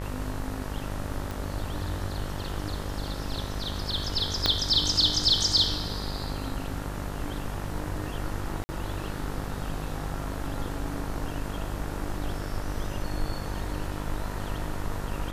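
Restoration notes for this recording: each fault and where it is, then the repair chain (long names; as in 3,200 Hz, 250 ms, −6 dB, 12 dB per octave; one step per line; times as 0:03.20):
mains buzz 50 Hz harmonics 39 −35 dBFS
0:01.31: click
0:04.46: click −8 dBFS
0:08.64–0:08.69: drop-out 50 ms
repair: click removal
hum removal 50 Hz, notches 39
repair the gap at 0:08.64, 50 ms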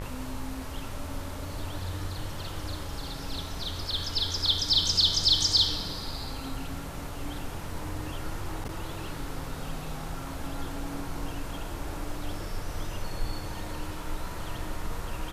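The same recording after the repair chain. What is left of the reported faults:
0:01.31: click
0:04.46: click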